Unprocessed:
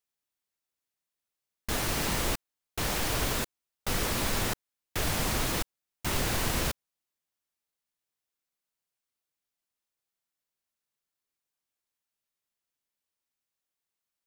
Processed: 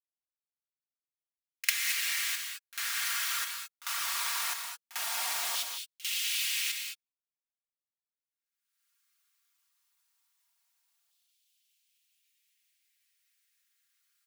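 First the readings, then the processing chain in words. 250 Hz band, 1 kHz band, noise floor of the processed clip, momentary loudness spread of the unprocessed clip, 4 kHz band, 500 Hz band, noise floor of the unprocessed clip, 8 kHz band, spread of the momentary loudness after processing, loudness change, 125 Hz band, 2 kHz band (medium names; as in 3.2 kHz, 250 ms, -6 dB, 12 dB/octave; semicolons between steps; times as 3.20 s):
under -35 dB, -5.5 dB, under -85 dBFS, 11 LU, +2.0 dB, -20.5 dB, under -85 dBFS, +1.0 dB, 8 LU, -0.5 dB, under -40 dB, +1.0 dB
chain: recorder AGC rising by 14 dB/s; band-stop 470 Hz, Q 12; expander -49 dBFS; amplifier tone stack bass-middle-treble 5-5-5; comb 4.3 ms, depth 58%; waveshaping leveller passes 1; LFO high-pass saw down 0.18 Hz 740–3300 Hz; pre-echo 49 ms -16.5 dB; gated-style reverb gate 240 ms rising, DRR 4 dB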